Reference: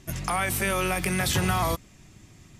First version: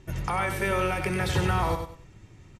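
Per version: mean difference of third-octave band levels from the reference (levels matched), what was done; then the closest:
5.0 dB: low-pass filter 1,900 Hz 6 dB per octave
comb filter 2.2 ms, depth 41%
repeating echo 96 ms, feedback 26%, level −7 dB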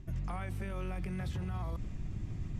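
10.0 dB: RIAA equalisation playback
reversed playback
downward compressor 5 to 1, threshold −32 dBFS, peak gain reduction 19.5 dB
reversed playback
brickwall limiter −30.5 dBFS, peak gain reduction 9.5 dB
level +1 dB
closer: first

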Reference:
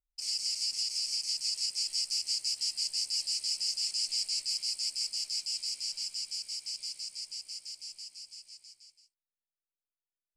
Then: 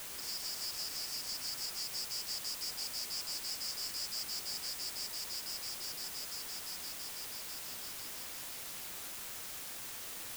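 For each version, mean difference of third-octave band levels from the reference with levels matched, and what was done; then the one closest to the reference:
16.5 dB: high-pass filter 740 Hz
bit-depth reduction 6 bits, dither triangular
level −8.5 dB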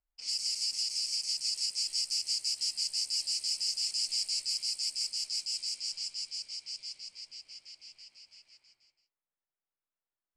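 1.0 dB: low-pass that shuts in the quiet parts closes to 1,200 Hz, open at −30 dBFS
one half of a high-frequency compander encoder only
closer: second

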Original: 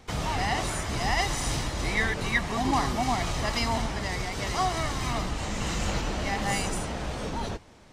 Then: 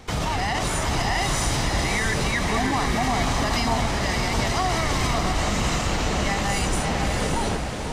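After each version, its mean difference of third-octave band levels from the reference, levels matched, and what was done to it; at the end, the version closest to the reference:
3.0 dB: brickwall limiter −23 dBFS, peak gain reduction 10.5 dB
on a send: feedback delay with all-pass diffusion 626 ms, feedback 40%, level −4 dB
on the sum: level +7.5 dB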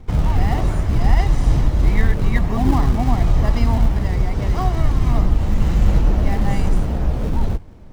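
7.0 dB: spectral tilt −3.5 dB per octave
in parallel at −10 dB: sample-and-hold swept by an LFO 35×, swing 160% 1.1 Hz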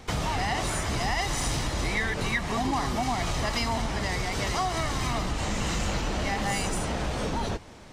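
1.5 dB: in parallel at −5 dB: soft clipping −23.5 dBFS, distortion −14 dB
on the sum: downward compressor 3 to 1, threshold −28 dBFS, peak gain reduction 8 dB
level +2 dB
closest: third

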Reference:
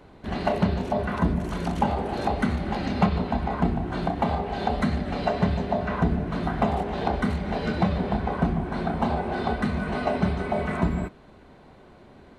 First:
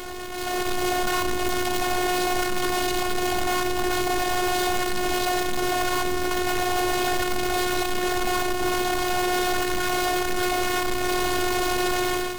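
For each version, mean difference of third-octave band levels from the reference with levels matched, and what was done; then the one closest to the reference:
15.0 dB: sign of each sample alone
automatic gain control gain up to 12 dB
phases set to zero 362 Hz
level −7 dB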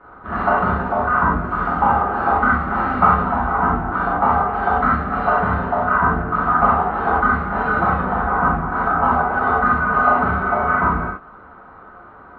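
8.0 dB: low-pass with resonance 1,300 Hz, resonance Q 9.3
low-shelf EQ 370 Hz −6.5 dB
reverb whose tail is shaped and stops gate 120 ms flat, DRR −7.5 dB
level −1.5 dB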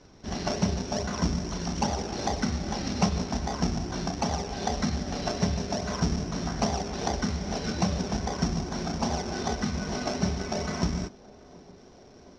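4.0 dB: in parallel at −5.5 dB: sample-and-hold swept by an LFO 31×, swing 100% 2.5 Hz
on the sum: low-pass with resonance 5,600 Hz, resonance Q 15
feedback echo with a band-pass in the loop 730 ms, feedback 82%, band-pass 440 Hz, level −21 dB
level −7 dB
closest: third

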